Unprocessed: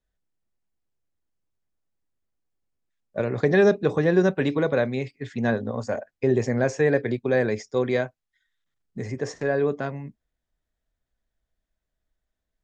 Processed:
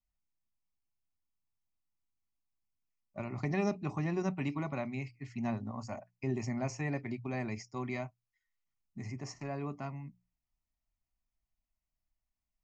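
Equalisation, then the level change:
mains-hum notches 60/120/180 Hz
phaser with its sweep stopped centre 2,400 Hz, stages 8
−6.5 dB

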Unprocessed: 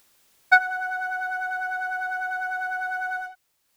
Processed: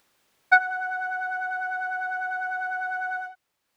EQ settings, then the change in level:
low-shelf EQ 73 Hz −8 dB
high-shelf EQ 4,400 Hz −11 dB
0.0 dB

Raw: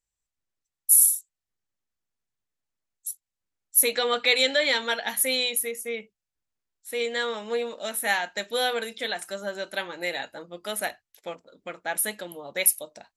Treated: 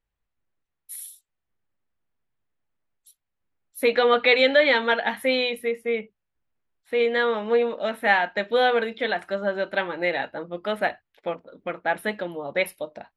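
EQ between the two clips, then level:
high-frequency loss of the air 420 metres
+8.5 dB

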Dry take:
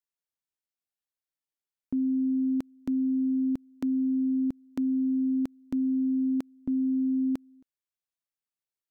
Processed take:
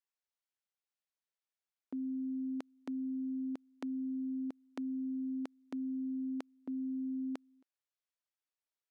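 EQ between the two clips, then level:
high-pass filter 460 Hz 12 dB per octave
high-frequency loss of the air 58 metres
−1.0 dB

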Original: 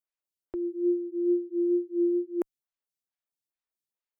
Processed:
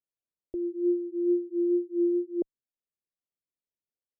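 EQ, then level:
Butterworth low-pass 620 Hz 36 dB per octave
0.0 dB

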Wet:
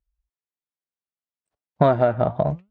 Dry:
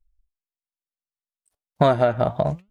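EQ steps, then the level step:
high-pass filter 59 Hz
high-frequency loss of the air 91 metres
high-shelf EQ 2,900 Hz −10.5 dB
+1.0 dB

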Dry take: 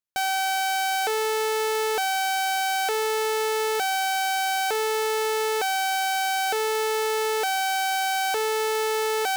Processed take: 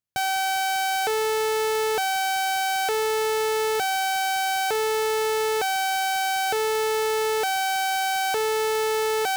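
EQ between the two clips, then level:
parametric band 110 Hz +13.5 dB 1.6 octaves
0.0 dB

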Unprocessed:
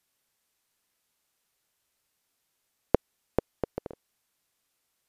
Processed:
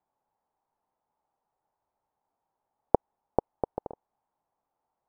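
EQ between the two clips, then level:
low-pass with resonance 850 Hz, resonance Q 4.9
−2.5 dB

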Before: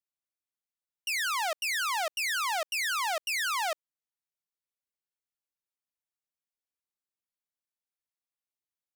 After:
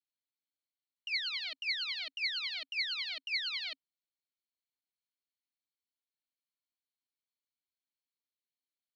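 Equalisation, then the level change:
formant filter i
low-pass with resonance 4,300 Hz, resonance Q 13
+3.0 dB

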